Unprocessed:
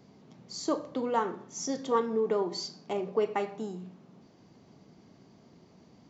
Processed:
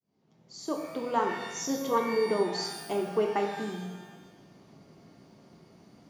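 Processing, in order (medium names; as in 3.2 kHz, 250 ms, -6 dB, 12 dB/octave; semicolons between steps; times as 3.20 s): fade-in on the opening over 1.20 s; pitch-shifted reverb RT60 1.1 s, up +12 st, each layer -8 dB, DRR 4 dB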